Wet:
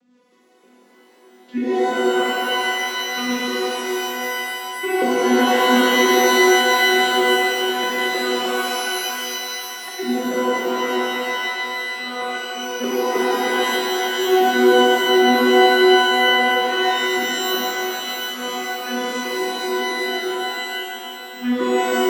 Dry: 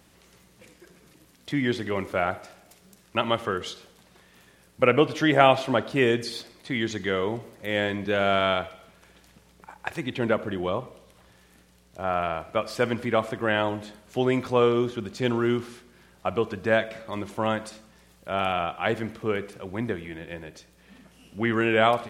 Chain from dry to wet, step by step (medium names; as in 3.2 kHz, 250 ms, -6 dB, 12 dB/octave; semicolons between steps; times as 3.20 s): vocoder on a broken chord bare fifth, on B3, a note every 313 ms; rotary cabinet horn 5 Hz, later 0.85 Hz, at 7.84 s; pitch-shifted reverb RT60 3.2 s, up +12 st, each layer -2 dB, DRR -7 dB